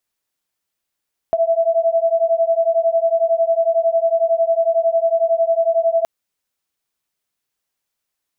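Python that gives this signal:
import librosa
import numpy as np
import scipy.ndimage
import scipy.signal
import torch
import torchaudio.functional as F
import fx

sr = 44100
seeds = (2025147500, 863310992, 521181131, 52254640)

y = fx.two_tone_beats(sr, length_s=4.72, hz=658.0, beat_hz=11.0, level_db=-16.5)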